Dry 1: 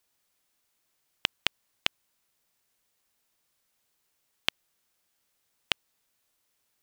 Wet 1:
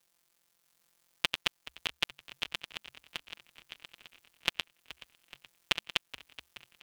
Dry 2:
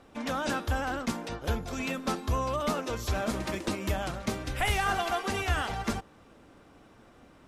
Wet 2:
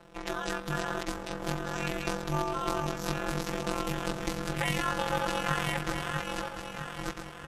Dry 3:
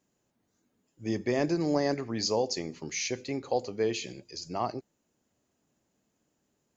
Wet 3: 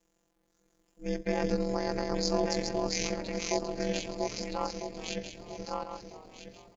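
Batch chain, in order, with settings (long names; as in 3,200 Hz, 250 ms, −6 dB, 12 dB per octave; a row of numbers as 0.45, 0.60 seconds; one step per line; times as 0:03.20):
feedback delay that plays each chunk backwards 649 ms, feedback 42%, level −2.5 dB
in parallel at −0.5 dB: downward compressor, threshold −40 dBFS
on the sum: phases set to zero 172 Hz
ring modulation 150 Hz
echo with shifted repeats 425 ms, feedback 63%, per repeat −72 Hz, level −17 dB
level +1 dB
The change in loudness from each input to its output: −3.0, −1.5, −2.0 LU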